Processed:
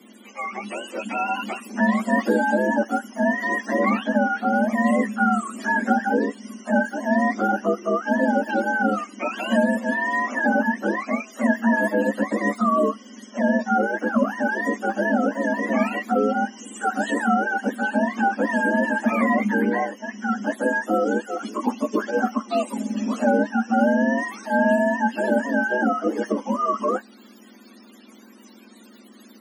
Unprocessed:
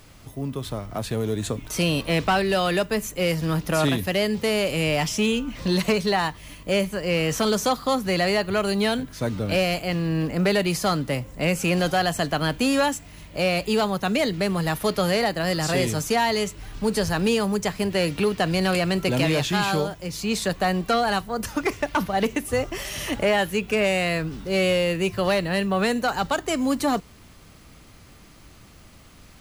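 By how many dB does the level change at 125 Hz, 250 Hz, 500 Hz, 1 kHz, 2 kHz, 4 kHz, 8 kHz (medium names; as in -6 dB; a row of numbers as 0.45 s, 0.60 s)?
no reading, +3.0 dB, -0.5 dB, +3.5 dB, +3.5 dB, -14.5 dB, -9.5 dB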